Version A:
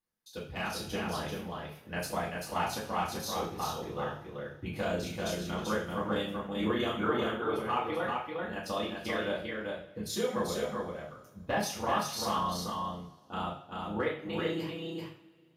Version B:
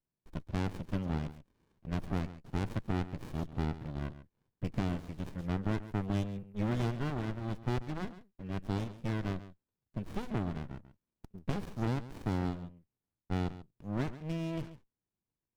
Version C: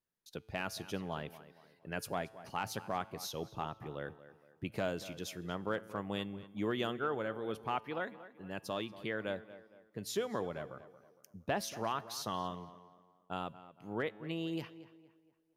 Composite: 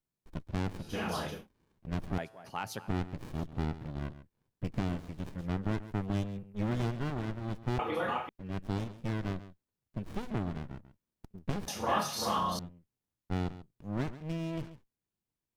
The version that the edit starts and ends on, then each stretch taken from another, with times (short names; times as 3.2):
B
0.9–1.36 from A, crossfade 0.24 s
2.18–2.88 from C
7.79–8.29 from A
11.68–12.59 from A